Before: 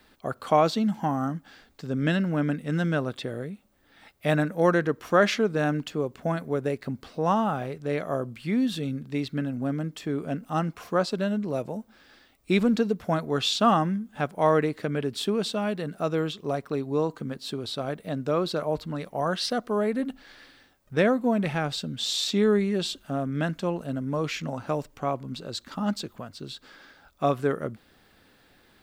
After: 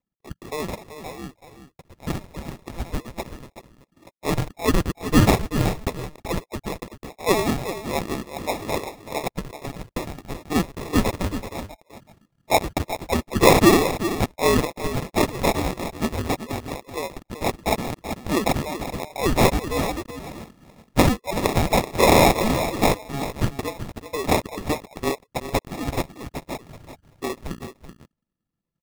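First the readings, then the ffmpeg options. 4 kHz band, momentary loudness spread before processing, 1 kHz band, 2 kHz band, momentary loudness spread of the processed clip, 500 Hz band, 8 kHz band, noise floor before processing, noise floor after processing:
+2.5 dB, 11 LU, +4.0 dB, +4.5 dB, 18 LU, +2.0 dB, +9.5 dB, -61 dBFS, -78 dBFS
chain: -af "highpass=f=1200:w=0.5412,highpass=f=1200:w=1.3066,anlmdn=0.00251,dynaudnorm=f=790:g=9:m=4.47,acrusher=samples=29:mix=1:aa=0.000001,aecho=1:1:381:0.282,volume=1.41"

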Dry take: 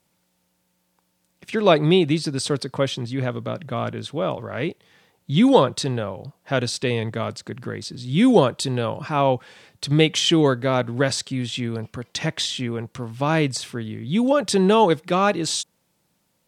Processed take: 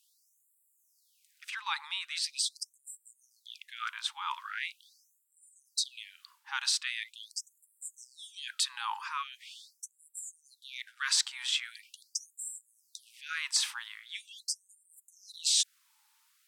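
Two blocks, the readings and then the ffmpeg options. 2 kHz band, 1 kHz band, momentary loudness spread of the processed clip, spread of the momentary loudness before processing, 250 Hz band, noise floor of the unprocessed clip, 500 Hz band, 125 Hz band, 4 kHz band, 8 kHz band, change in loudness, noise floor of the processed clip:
-8.5 dB, -16.5 dB, 20 LU, 14 LU, under -40 dB, -70 dBFS, under -40 dB, under -40 dB, -6.5 dB, -2.0 dB, -12.0 dB, -74 dBFS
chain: -af "areverse,acompressor=threshold=0.0562:ratio=8,areverse,afftfilt=real='re*gte(b*sr/1024,780*pow(7400/780,0.5+0.5*sin(2*PI*0.42*pts/sr)))':imag='im*gte(b*sr/1024,780*pow(7400/780,0.5+0.5*sin(2*PI*0.42*pts/sr)))':win_size=1024:overlap=0.75,volume=1.33"

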